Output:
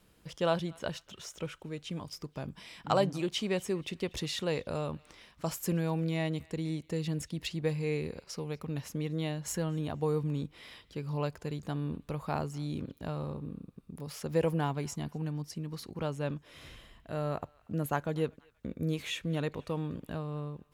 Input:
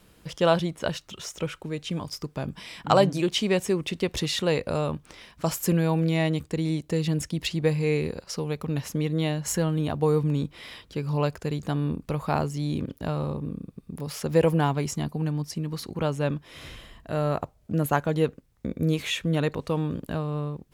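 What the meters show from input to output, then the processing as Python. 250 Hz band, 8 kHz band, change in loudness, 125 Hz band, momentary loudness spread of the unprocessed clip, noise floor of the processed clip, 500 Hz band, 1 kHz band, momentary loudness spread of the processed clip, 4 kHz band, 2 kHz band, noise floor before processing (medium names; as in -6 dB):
-8.0 dB, -8.0 dB, -8.0 dB, -8.0 dB, 12 LU, -64 dBFS, -8.0 dB, -8.0 dB, 12 LU, -8.0 dB, -8.0 dB, -59 dBFS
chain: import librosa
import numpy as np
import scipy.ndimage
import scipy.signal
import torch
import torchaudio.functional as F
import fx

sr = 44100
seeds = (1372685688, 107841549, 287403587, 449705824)

y = fx.echo_banded(x, sr, ms=239, feedback_pct=55, hz=2400.0, wet_db=-22.5)
y = F.gain(torch.from_numpy(y), -8.0).numpy()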